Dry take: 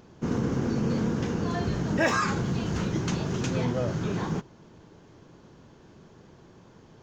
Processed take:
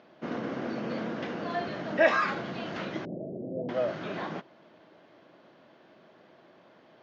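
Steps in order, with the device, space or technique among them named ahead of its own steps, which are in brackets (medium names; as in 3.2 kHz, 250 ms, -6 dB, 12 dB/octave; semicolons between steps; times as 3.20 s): phone earpiece (cabinet simulation 340–4100 Hz, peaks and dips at 430 Hz -7 dB, 630 Hz +8 dB, 920 Hz -4 dB, 2 kHz +3 dB); 3.05–3.69 s: steep low-pass 620 Hz 48 dB/octave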